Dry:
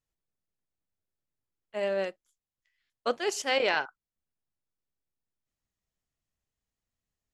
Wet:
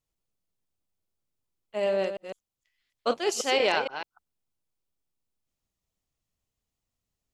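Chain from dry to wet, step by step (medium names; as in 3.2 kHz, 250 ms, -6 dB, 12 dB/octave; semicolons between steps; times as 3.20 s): chunks repeated in reverse 155 ms, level -8 dB; peaking EQ 1.7 kHz -6.5 dB 0.53 oct; trim +3 dB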